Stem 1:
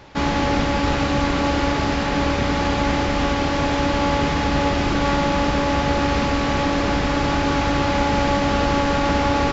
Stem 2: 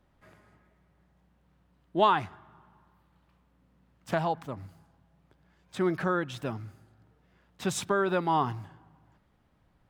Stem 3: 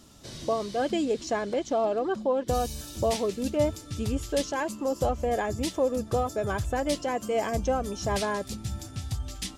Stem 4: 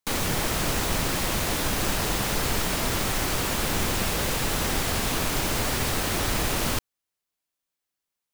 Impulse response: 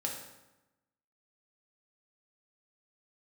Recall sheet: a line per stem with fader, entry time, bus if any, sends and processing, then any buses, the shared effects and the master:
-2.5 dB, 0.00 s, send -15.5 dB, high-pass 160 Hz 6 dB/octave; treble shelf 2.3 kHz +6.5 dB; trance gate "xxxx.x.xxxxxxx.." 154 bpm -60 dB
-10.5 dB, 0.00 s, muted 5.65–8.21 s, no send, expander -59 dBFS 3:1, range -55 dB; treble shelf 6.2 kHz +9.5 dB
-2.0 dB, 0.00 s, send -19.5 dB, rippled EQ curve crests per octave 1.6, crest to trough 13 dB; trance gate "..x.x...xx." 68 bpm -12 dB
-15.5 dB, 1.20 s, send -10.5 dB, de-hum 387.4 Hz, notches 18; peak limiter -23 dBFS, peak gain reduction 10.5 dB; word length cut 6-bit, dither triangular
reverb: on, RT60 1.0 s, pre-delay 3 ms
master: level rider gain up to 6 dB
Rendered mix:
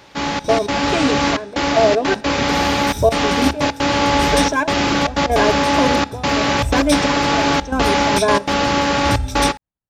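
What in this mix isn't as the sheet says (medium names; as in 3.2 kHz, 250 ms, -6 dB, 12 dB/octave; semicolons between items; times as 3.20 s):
stem 2 -10.5 dB -> -20.0 dB; stem 3 -2.0 dB -> +4.0 dB; stem 4: muted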